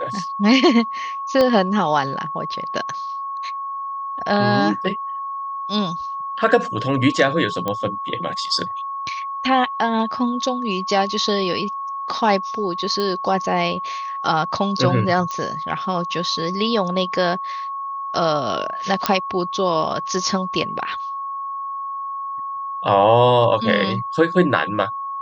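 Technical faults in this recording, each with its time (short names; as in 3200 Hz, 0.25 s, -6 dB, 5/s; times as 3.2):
tone 1100 Hz -25 dBFS
1.41 pop -7 dBFS
7.68 pop -10 dBFS
13 pop -12 dBFS
15.31 pop -15 dBFS
19.06 pop -1 dBFS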